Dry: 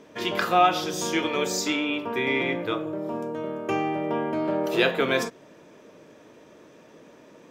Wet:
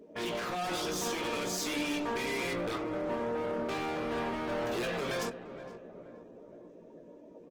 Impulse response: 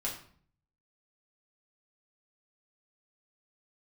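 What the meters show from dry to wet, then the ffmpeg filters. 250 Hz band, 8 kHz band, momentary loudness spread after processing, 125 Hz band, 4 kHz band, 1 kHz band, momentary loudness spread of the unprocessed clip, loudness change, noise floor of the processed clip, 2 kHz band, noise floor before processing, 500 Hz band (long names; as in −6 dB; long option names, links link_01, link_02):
−8.0 dB, −5.0 dB, 19 LU, −6.0 dB, −7.5 dB, −10.0 dB, 10 LU, −8.5 dB, −53 dBFS, −9.0 dB, −52 dBFS, −7.5 dB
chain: -filter_complex "[0:a]bandreject=frequency=50:width_type=h:width=6,bandreject=frequency=100:width_type=h:width=6,bandreject=frequency=150:width_type=h:width=6,bandreject=frequency=200:width_type=h:width=6,bandreject=frequency=250:width_type=h:width=6,bandreject=frequency=300:width_type=h:width=6,afftdn=noise_reduction=20:noise_floor=-46,alimiter=limit=-17dB:level=0:latency=1:release=96,asoftclip=type=hard:threshold=-33.5dB,asplit=2[link_01][link_02];[link_02]adelay=17,volume=-7dB[link_03];[link_01][link_03]amix=inputs=2:normalize=0,asplit=2[link_04][link_05];[link_05]adelay=472,lowpass=frequency=1200:poles=1,volume=-11dB,asplit=2[link_06][link_07];[link_07]adelay=472,lowpass=frequency=1200:poles=1,volume=0.52,asplit=2[link_08][link_09];[link_09]adelay=472,lowpass=frequency=1200:poles=1,volume=0.52,asplit=2[link_10][link_11];[link_11]adelay=472,lowpass=frequency=1200:poles=1,volume=0.52,asplit=2[link_12][link_13];[link_13]adelay=472,lowpass=frequency=1200:poles=1,volume=0.52,asplit=2[link_14][link_15];[link_15]adelay=472,lowpass=frequency=1200:poles=1,volume=0.52[link_16];[link_04][link_06][link_08][link_10][link_12][link_14][link_16]amix=inputs=7:normalize=0" -ar 48000 -c:a libopus -b:a 16k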